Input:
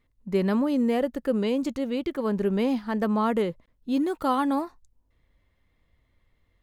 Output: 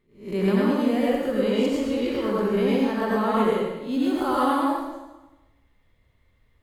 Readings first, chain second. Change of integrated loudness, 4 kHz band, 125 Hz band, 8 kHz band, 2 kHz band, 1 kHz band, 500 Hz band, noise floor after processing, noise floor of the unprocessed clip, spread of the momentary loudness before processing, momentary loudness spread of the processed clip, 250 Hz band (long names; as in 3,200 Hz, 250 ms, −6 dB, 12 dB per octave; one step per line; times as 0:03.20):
+2.5 dB, +5.0 dB, +3.0 dB, can't be measured, +5.0 dB, +4.0 dB, +4.0 dB, −64 dBFS, −70 dBFS, 5 LU, 5 LU, +2.0 dB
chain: peak hold with a rise ahead of every peak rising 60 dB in 0.39 s
dense smooth reverb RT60 1.1 s, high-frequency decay 0.95×, pre-delay 75 ms, DRR −6 dB
level −4 dB